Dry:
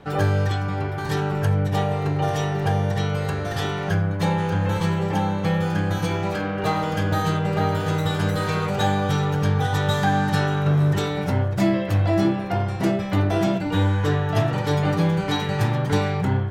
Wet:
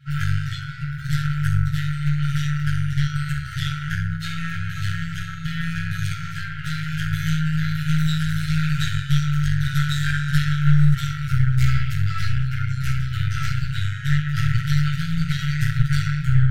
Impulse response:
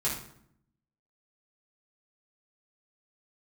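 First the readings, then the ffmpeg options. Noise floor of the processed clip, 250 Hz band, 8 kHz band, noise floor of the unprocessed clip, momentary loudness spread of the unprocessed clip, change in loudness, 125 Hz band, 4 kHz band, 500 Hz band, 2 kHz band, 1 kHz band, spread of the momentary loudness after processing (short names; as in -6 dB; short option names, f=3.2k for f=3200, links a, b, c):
-30 dBFS, n/a, 0.0 dB, -27 dBFS, 4 LU, -0.5 dB, +1.5 dB, 0.0 dB, under -40 dB, +1.0 dB, -10.5 dB, 8 LU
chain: -filter_complex "[1:a]atrim=start_sample=2205[a];[0:a][a]afir=irnorm=-1:irlink=0,aeval=exprs='1.33*(cos(1*acos(clip(val(0)/1.33,-1,1)))-cos(1*PI/2))+0.0106*(cos(2*acos(clip(val(0)/1.33,-1,1)))-cos(2*PI/2))+0.473*(cos(4*acos(clip(val(0)/1.33,-1,1)))-cos(4*PI/2))+0.0168*(cos(6*acos(clip(val(0)/1.33,-1,1)))-cos(6*PI/2))+0.0422*(cos(8*acos(clip(val(0)/1.33,-1,1)))-cos(8*PI/2))':c=same,afftfilt=real='re*(1-between(b*sr/4096,170,1300))':imag='im*(1-between(b*sr/4096,170,1300))':win_size=4096:overlap=0.75,volume=-8dB"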